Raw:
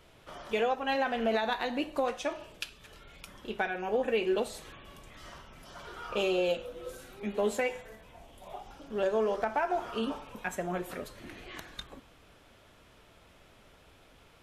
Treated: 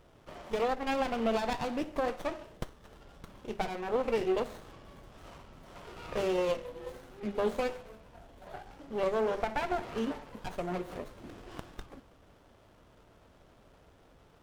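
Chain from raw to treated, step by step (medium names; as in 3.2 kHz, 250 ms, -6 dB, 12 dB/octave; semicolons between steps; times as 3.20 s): sliding maximum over 17 samples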